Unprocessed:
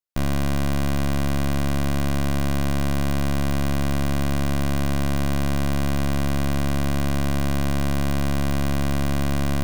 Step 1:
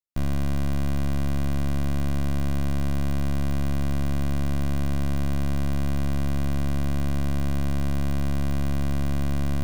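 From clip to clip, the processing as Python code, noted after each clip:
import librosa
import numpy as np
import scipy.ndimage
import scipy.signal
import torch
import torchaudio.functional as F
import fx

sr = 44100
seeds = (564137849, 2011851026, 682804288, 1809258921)

y = fx.low_shelf(x, sr, hz=240.0, db=7.5)
y = F.gain(torch.from_numpy(y), -8.0).numpy()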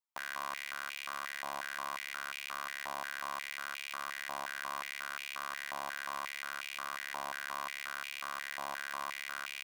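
y = fx.filter_held_highpass(x, sr, hz=5.6, low_hz=920.0, high_hz=2400.0)
y = F.gain(torch.from_numpy(y), -4.0).numpy()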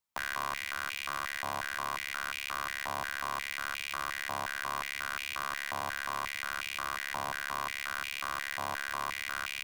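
y = fx.octave_divider(x, sr, octaves=1, level_db=3.0)
y = fx.rider(y, sr, range_db=10, speed_s=0.5)
y = F.gain(torch.from_numpy(y), 4.5).numpy()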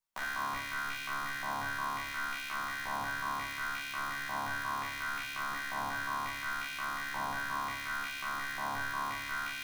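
y = fx.comb_fb(x, sr, f0_hz=140.0, decay_s=0.95, harmonics='all', damping=0.0, mix_pct=50)
y = fx.room_shoebox(y, sr, seeds[0], volume_m3=120.0, walls='mixed', distance_m=1.1)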